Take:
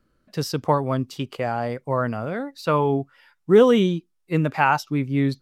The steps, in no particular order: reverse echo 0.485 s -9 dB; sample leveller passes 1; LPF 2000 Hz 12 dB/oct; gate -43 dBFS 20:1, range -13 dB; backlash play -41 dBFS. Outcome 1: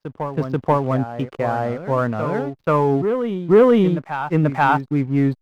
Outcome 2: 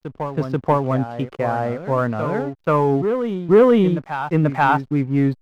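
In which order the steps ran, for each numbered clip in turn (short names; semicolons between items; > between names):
LPF > backlash > sample leveller > reverse echo > gate; gate > LPF > sample leveller > reverse echo > backlash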